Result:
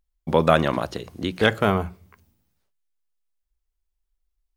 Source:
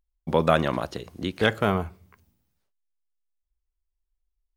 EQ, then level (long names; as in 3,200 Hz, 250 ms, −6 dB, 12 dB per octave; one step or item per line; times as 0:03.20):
mains-hum notches 60/120/180 Hz
+3.0 dB